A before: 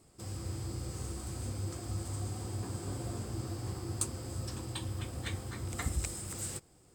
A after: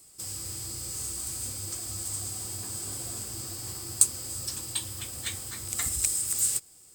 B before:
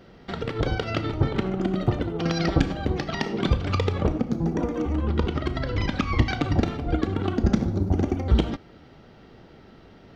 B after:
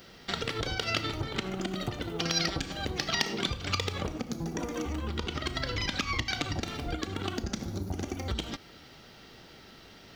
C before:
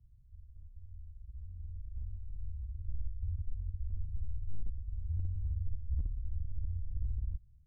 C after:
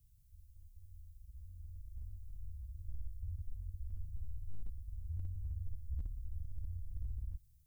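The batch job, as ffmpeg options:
ffmpeg -i in.wav -af "acompressor=threshold=-25dB:ratio=6,crystalizer=i=9.5:c=0,volume=-6dB" out.wav

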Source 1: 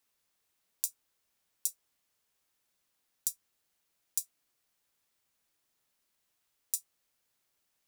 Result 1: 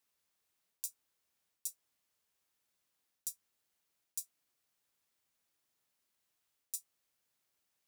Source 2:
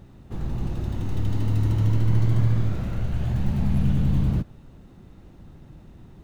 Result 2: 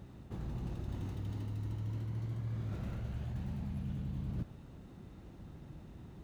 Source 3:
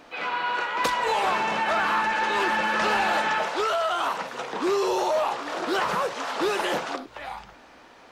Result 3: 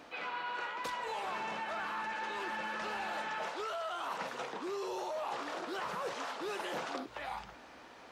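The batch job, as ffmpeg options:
ffmpeg -i in.wav -af "highpass=43,areverse,acompressor=threshold=-32dB:ratio=12,areverse,volume=-3.5dB" out.wav

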